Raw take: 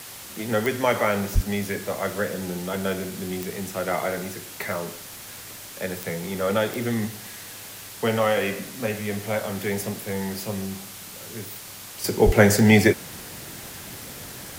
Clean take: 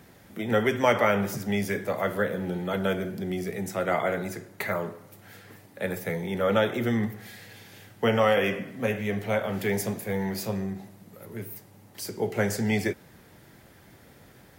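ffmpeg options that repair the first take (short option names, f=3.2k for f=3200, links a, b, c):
-filter_complex "[0:a]adeclick=t=4,asplit=3[a][b][c];[a]afade=t=out:st=1.34:d=0.02[d];[b]highpass=f=140:w=0.5412,highpass=f=140:w=1.3066,afade=t=in:st=1.34:d=0.02,afade=t=out:st=1.46:d=0.02[e];[c]afade=t=in:st=1.46:d=0.02[f];[d][e][f]amix=inputs=3:normalize=0,asplit=3[g][h][i];[g]afade=t=out:st=12.25:d=0.02[j];[h]highpass=f=140:w=0.5412,highpass=f=140:w=1.3066,afade=t=in:st=12.25:d=0.02,afade=t=out:st=12.37:d=0.02[k];[i]afade=t=in:st=12.37:d=0.02[l];[j][k][l]amix=inputs=3:normalize=0,afwtdn=0.011,asetnsamples=n=441:p=0,asendcmd='12.04 volume volume -10.5dB',volume=0dB"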